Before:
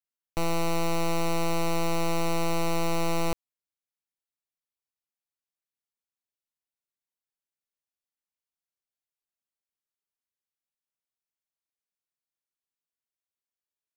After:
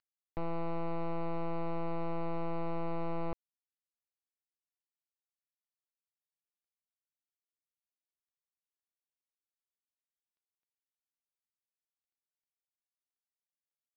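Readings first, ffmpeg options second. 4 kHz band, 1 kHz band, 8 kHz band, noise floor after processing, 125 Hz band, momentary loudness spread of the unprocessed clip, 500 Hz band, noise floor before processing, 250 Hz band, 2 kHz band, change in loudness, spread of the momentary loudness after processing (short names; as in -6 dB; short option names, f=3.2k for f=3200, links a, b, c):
-23.5 dB, -9.0 dB, under -40 dB, under -85 dBFS, -8.0 dB, 4 LU, -8.5 dB, under -85 dBFS, -8.0 dB, -15.5 dB, -9.5 dB, 4 LU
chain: -af "lowpass=1.5k,acompressor=mode=upward:threshold=-39dB:ratio=2.5,aresample=11025,aeval=exprs='sgn(val(0))*max(abs(val(0))-0.00133,0)':c=same,aresample=44100,volume=-8dB"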